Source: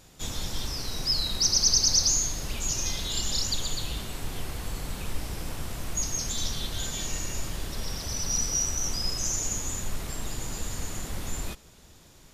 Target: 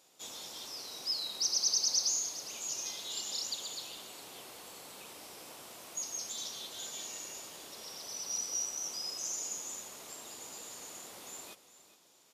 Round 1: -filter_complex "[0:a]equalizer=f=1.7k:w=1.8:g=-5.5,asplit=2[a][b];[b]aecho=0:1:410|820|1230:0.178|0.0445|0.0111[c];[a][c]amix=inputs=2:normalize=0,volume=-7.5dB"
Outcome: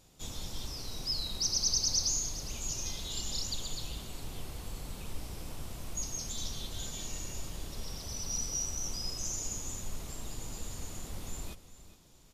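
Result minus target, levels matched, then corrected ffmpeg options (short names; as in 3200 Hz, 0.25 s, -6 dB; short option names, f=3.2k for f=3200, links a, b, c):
500 Hz band +2.5 dB
-filter_complex "[0:a]highpass=430,equalizer=f=1.7k:w=1.8:g=-5.5,asplit=2[a][b];[b]aecho=0:1:410|820|1230:0.178|0.0445|0.0111[c];[a][c]amix=inputs=2:normalize=0,volume=-7.5dB"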